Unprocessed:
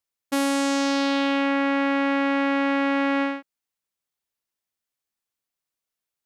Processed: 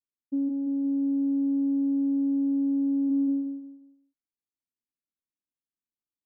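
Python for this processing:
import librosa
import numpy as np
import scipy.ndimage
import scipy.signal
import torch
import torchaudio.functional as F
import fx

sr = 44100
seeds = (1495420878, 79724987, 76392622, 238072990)

y = fx.lower_of_two(x, sr, delay_ms=6.1, at=(0.48, 3.09), fade=0.02)
y = fx.ladder_lowpass(y, sr, hz=340.0, resonance_pct=50)
y = fx.echo_feedback(y, sr, ms=177, feedback_pct=31, wet_db=-4.5)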